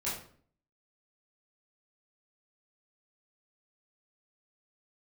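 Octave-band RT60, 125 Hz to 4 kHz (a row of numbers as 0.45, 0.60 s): 0.65, 0.65, 0.55, 0.50, 0.45, 0.40 s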